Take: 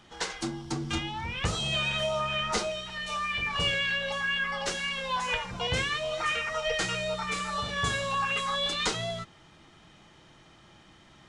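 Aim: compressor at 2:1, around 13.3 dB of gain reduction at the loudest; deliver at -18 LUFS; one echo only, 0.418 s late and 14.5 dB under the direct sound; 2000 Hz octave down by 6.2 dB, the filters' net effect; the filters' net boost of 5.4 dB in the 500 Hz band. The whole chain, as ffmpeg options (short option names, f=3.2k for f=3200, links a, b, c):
-af "equalizer=f=500:t=o:g=7.5,equalizer=f=2k:t=o:g=-8.5,acompressor=threshold=-48dB:ratio=2,aecho=1:1:418:0.188,volume=23dB"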